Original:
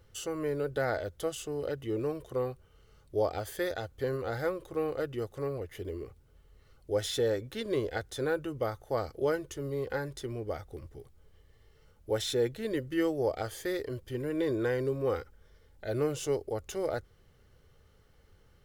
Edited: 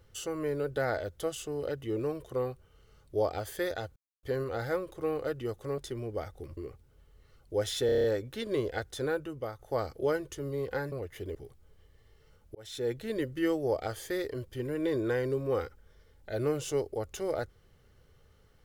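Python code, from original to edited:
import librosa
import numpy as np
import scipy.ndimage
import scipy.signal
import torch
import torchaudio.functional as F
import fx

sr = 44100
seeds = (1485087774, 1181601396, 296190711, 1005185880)

y = fx.edit(x, sr, fx.insert_silence(at_s=3.96, length_s=0.27),
    fx.swap(start_s=5.51, length_s=0.43, other_s=10.11, other_length_s=0.79),
    fx.stutter(start_s=7.23, slice_s=0.03, count=7),
    fx.fade_out_to(start_s=8.21, length_s=0.57, floor_db=-7.5),
    fx.fade_in_span(start_s=12.1, length_s=0.48), tone=tone)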